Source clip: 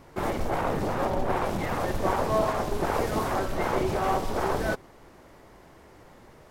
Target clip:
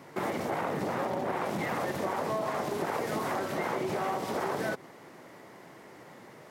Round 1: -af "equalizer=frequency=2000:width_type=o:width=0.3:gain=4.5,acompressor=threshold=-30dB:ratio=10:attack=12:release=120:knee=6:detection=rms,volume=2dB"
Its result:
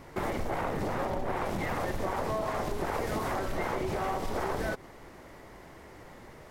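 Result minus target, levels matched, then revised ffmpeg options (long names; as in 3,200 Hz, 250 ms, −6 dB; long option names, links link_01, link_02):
125 Hz band +4.0 dB
-af "highpass=frequency=130:width=0.5412,highpass=frequency=130:width=1.3066,equalizer=frequency=2000:width_type=o:width=0.3:gain=4.5,acompressor=threshold=-30dB:ratio=10:attack=12:release=120:knee=6:detection=rms,volume=2dB"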